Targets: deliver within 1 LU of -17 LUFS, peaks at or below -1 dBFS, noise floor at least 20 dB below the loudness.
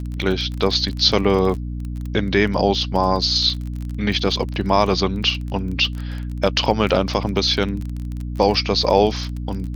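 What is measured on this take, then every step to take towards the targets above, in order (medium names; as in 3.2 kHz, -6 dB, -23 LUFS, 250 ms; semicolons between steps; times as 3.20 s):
tick rate 27 per s; hum 60 Hz; highest harmonic 300 Hz; hum level -25 dBFS; loudness -20.0 LUFS; peak level -2.0 dBFS; loudness target -17.0 LUFS
-> de-click; hum notches 60/120/180/240/300 Hz; trim +3 dB; peak limiter -1 dBFS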